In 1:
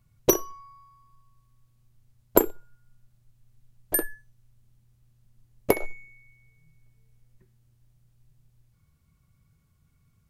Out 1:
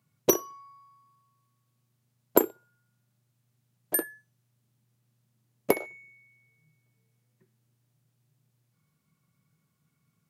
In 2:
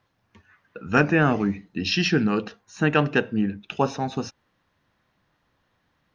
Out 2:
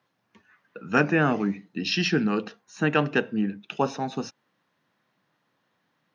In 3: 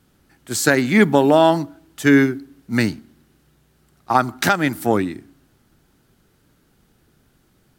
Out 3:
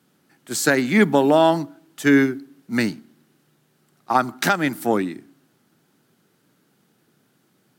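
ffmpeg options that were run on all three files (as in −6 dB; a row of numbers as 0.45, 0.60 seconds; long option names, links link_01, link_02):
-af "highpass=frequency=140:width=0.5412,highpass=frequency=140:width=1.3066,volume=-2dB"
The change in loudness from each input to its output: −1.5, −2.5, −2.0 LU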